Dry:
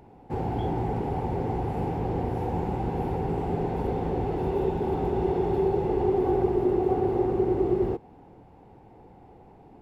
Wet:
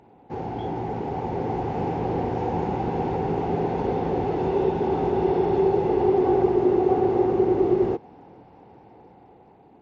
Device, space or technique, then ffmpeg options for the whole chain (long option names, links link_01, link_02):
Bluetooth headset: -af "highpass=frequency=180:poles=1,dynaudnorm=framelen=520:gausssize=5:maxgain=5dB,aresample=16000,aresample=44100" -ar 16000 -c:a sbc -b:a 64k